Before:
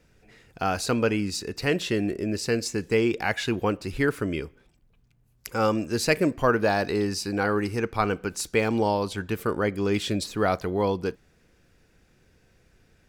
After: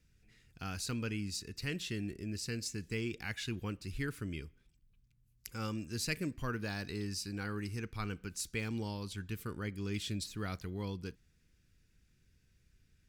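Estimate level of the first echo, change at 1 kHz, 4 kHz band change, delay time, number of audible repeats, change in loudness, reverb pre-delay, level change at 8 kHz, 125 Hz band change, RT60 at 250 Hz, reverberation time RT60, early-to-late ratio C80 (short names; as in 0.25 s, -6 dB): none, -19.5 dB, -9.0 dB, none, none, -13.5 dB, none, -8.0 dB, -7.5 dB, none, none, none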